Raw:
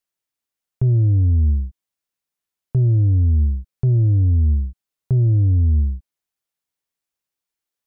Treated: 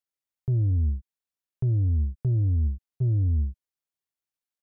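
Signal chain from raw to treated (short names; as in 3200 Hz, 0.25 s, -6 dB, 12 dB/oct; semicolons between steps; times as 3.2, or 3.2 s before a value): tempo 1.7×; gain -7.5 dB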